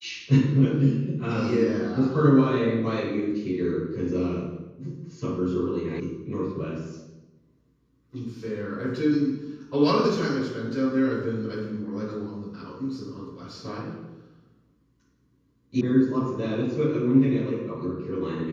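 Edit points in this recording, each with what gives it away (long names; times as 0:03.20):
0:06.00: cut off before it has died away
0:15.81: cut off before it has died away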